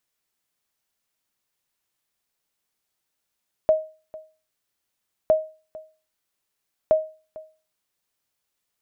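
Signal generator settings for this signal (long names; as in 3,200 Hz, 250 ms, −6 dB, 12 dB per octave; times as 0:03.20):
ping with an echo 628 Hz, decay 0.35 s, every 1.61 s, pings 3, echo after 0.45 s, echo −21 dB −10 dBFS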